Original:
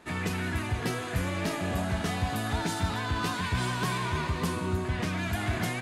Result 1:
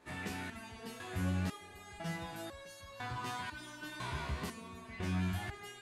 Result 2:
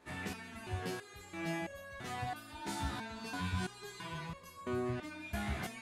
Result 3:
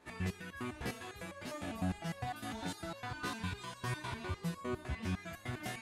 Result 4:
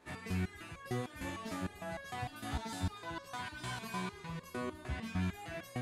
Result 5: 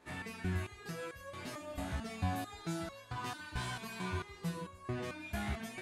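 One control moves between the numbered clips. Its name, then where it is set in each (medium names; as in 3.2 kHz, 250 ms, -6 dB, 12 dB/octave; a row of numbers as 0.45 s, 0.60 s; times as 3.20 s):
resonator arpeggio, rate: 2 Hz, 3 Hz, 9.9 Hz, 6.6 Hz, 4.5 Hz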